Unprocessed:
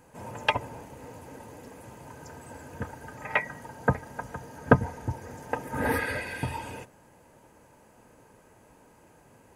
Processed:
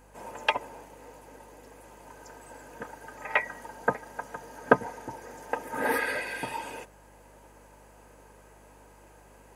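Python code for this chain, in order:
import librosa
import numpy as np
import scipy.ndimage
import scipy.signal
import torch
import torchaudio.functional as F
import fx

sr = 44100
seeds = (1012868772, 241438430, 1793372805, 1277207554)

y = scipy.signal.sosfilt(scipy.signal.butter(2, 330.0, 'highpass', fs=sr, output='sos'), x)
y = fx.rider(y, sr, range_db=3, speed_s=2.0)
y = fx.add_hum(y, sr, base_hz=50, snr_db=24)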